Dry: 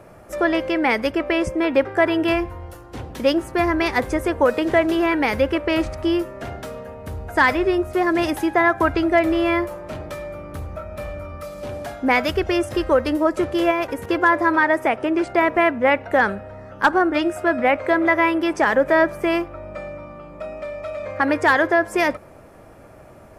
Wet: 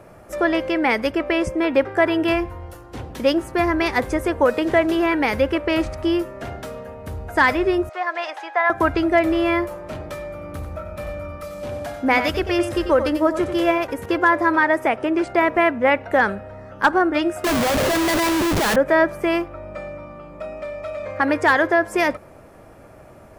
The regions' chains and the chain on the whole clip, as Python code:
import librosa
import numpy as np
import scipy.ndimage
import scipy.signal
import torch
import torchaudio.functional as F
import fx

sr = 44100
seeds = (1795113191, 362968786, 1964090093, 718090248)

y = fx.chain(x, sr, fx.highpass(hz=620.0, slope=24),
    fx.air_absorb(metres=140.0), at=(7.89, 8.7))
y = fx.chain(y, sr, fx.notch(hz=400.0, q=13.0),
    fx.echo_single(ms=92, db=-9.5), at=(10.32, 13.78))
y = fx.chain(y, sr, fx.high_shelf(hz=3700.0, db=-6.5),
    fx.schmitt(flips_db=-34.0), at=(17.44, 18.76))